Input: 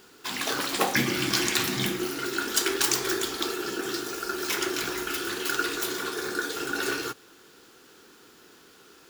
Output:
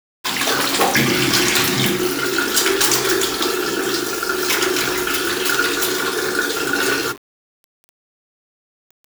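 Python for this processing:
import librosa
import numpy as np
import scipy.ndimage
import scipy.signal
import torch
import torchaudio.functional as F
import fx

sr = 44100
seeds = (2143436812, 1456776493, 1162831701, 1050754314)

y = fx.leveller(x, sr, passes=3)
y = fx.hum_notches(y, sr, base_hz=50, count=8)
y = fx.quant_dither(y, sr, seeds[0], bits=6, dither='none')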